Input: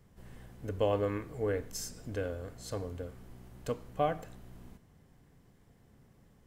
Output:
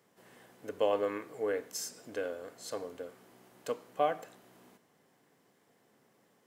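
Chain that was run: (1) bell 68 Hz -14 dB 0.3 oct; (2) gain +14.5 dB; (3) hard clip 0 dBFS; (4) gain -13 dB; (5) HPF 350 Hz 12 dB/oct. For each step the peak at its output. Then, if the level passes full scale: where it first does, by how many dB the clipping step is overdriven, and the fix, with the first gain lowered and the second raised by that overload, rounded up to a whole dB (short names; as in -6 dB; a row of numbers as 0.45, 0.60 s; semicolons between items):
-16.5, -2.0, -2.0, -15.0, -16.0 dBFS; no overload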